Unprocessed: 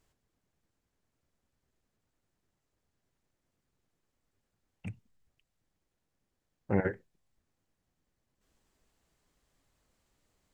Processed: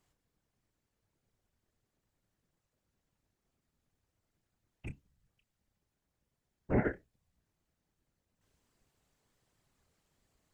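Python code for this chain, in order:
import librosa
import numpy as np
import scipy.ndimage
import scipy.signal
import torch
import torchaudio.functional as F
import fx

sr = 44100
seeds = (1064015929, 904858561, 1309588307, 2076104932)

y = fx.whisperise(x, sr, seeds[0])
y = fx.doubler(y, sr, ms=29.0, db=-14)
y = F.gain(torch.from_numpy(y), -1.5).numpy()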